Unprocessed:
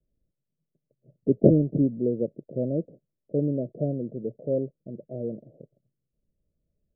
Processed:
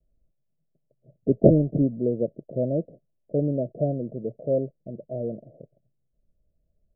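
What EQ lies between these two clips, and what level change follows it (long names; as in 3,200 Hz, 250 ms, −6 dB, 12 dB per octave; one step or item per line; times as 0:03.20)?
low-pass with resonance 690 Hz, resonance Q 4.9
low-shelf EQ 68 Hz +10.5 dB
low-shelf EQ 450 Hz +7.5 dB
−7.5 dB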